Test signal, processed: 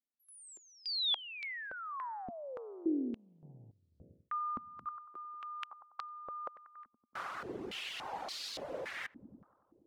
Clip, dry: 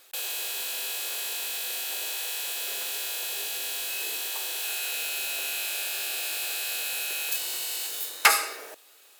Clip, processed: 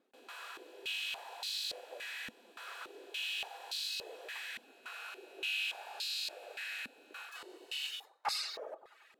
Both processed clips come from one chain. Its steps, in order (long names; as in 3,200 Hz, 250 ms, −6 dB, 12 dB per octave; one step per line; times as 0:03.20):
feedback echo with a low-pass in the loop 94 ms, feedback 80%, low-pass 1,700 Hz, level −12.5 dB
reversed playback
downward compressor 10 to 1, threshold −30 dBFS
reversed playback
reverb reduction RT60 0.64 s
band-pass on a step sequencer 3.5 Hz 240–4,300 Hz
level +7.5 dB